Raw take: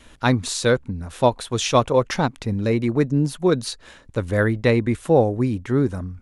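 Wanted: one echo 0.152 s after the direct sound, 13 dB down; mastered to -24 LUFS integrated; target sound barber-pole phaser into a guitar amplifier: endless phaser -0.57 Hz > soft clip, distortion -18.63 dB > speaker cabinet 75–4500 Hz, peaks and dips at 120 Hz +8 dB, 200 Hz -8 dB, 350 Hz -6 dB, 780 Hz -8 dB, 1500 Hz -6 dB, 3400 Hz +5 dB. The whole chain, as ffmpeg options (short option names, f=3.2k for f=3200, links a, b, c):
-filter_complex "[0:a]aecho=1:1:152:0.224,asplit=2[a][b];[b]afreqshift=-0.57[c];[a][c]amix=inputs=2:normalize=1,asoftclip=threshold=-10dB,highpass=75,equalizer=f=120:t=q:w=4:g=8,equalizer=f=200:t=q:w=4:g=-8,equalizer=f=350:t=q:w=4:g=-6,equalizer=f=780:t=q:w=4:g=-8,equalizer=f=1.5k:t=q:w=4:g=-6,equalizer=f=3.4k:t=q:w=4:g=5,lowpass=f=4.5k:w=0.5412,lowpass=f=4.5k:w=1.3066,volume=1dB"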